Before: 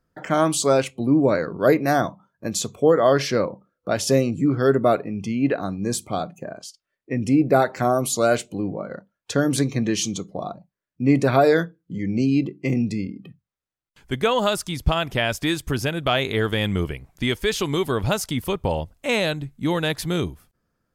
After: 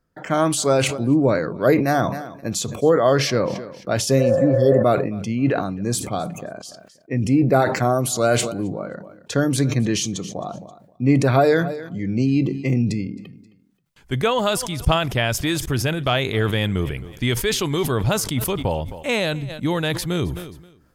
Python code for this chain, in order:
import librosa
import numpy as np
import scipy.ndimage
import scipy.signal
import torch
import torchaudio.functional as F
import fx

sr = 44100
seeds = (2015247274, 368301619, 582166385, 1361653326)

p1 = fx.spec_repair(x, sr, seeds[0], start_s=4.22, length_s=0.58, low_hz=510.0, high_hz=1800.0, source='before')
p2 = p1 + fx.echo_feedback(p1, sr, ms=265, feedback_pct=25, wet_db=-23.5, dry=0)
p3 = fx.dynamic_eq(p2, sr, hz=120.0, q=3.8, threshold_db=-41.0, ratio=4.0, max_db=6)
y = fx.sustainer(p3, sr, db_per_s=60.0)